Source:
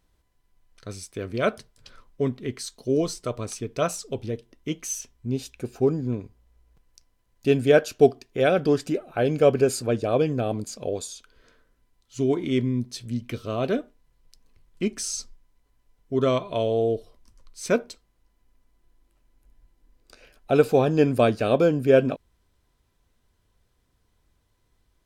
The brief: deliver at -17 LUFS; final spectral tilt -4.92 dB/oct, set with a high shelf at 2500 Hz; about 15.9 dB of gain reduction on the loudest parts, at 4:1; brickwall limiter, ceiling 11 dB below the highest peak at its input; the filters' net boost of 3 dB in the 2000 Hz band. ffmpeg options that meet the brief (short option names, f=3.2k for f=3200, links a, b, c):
-af "equalizer=f=2k:t=o:g=7,highshelf=f=2.5k:g=-5.5,acompressor=threshold=-31dB:ratio=4,volume=22.5dB,alimiter=limit=-6.5dB:level=0:latency=1"